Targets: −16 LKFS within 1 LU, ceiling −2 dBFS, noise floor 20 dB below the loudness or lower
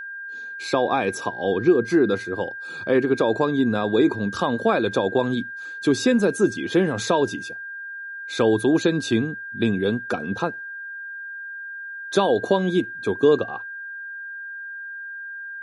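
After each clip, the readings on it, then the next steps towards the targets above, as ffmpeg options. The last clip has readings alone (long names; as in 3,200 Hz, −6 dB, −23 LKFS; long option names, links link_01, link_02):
interfering tone 1,600 Hz; level of the tone −32 dBFS; integrated loudness −22.5 LKFS; sample peak −6.5 dBFS; target loudness −16.0 LKFS
→ -af "bandreject=frequency=1600:width=30"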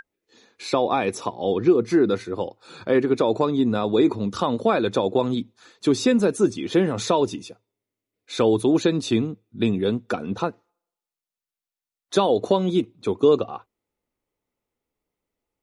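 interfering tone none found; integrated loudness −22.5 LKFS; sample peak −6.5 dBFS; target loudness −16.0 LKFS
→ -af "volume=6.5dB,alimiter=limit=-2dB:level=0:latency=1"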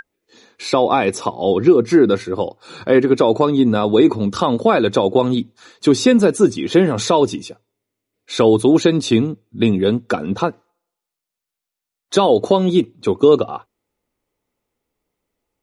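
integrated loudness −16.0 LKFS; sample peak −2.0 dBFS; background noise floor −84 dBFS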